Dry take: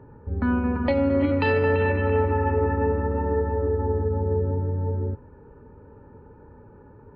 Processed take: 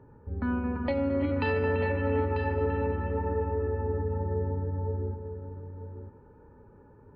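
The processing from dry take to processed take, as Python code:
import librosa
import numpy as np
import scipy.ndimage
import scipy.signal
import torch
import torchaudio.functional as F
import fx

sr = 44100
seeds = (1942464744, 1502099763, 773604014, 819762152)

y = x + 10.0 ** (-9.0 / 20.0) * np.pad(x, (int(943 * sr / 1000.0), 0))[:len(x)]
y = y * librosa.db_to_amplitude(-6.5)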